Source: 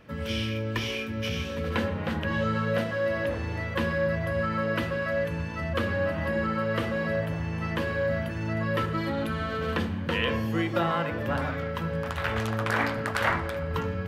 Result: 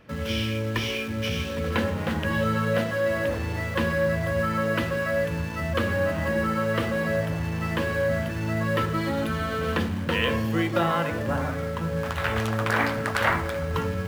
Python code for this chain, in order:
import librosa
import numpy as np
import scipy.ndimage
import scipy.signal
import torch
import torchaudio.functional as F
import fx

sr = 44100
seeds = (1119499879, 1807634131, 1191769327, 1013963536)

p1 = fx.high_shelf(x, sr, hz=2500.0, db=-11.0, at=(11.22, 11.97))
p2 = fx.quant_dither(p1, sr, seeds[0], bits=6, dither='none')
y = p1 + (p2 * 10.0 ** (-9.0 / 20.0))